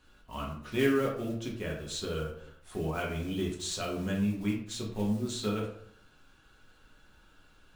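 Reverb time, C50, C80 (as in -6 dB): 0.65 s, 5.5 dB, 9.0 dB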